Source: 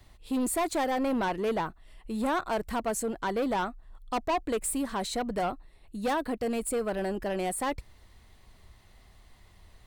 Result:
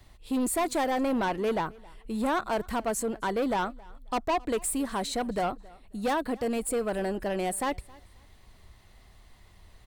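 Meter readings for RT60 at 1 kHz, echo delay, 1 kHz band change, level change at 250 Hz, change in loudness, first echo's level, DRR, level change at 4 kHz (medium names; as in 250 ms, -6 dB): no reverb, 269 ms, +1.0 dB, +1.0 dB, +1.0 dB, -24.0 dB, no reverb, +1.0 dB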